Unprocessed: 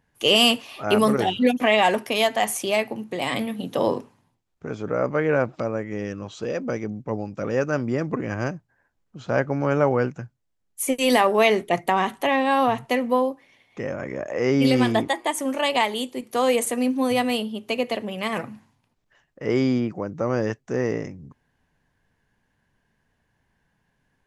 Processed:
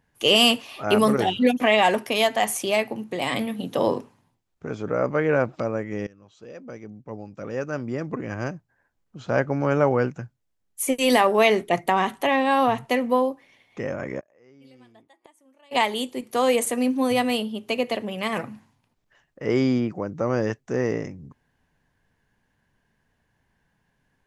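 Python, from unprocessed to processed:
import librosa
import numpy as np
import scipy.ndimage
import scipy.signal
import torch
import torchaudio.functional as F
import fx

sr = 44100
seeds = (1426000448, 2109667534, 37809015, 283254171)

y = fx.gate_flip(x, sr, shuts_db=-23.0, range_db=-33, at=(14.19, 15.71), fade=0.02)
y = fx.edit(y, sr, fx.fade_in_from(start_s=6.07, length_s=3.31, floor_db=-21.5), tone=tone)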